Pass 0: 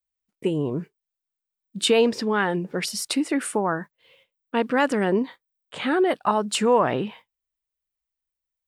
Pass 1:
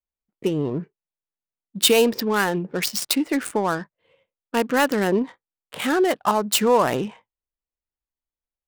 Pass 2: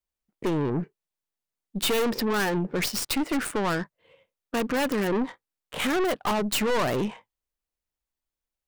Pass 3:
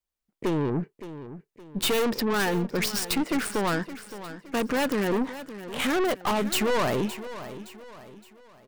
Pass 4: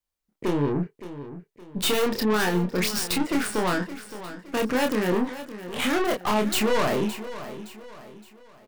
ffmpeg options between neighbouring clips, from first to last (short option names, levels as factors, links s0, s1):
-af "adynamicsmooth=sensitivity=5.5:basefreq=1300,aemphasis=mode=production:type=50fm,volume=1.19"
-af "aeval=exprs='(tanh(22.4*val(0)+0.4)-tanh(0.4))/22.4':c=same,volume=1.68"
-af "aecho=1:1:567|1134|1701|2268:0.211|0.0845|0.0338|0.0135"
-filter_complex "[0:a]asplit=2[s0][s1];[s1]adelay=28,volume=0.631[s2];[s0][s2]amix=inputs=2:normalize=0"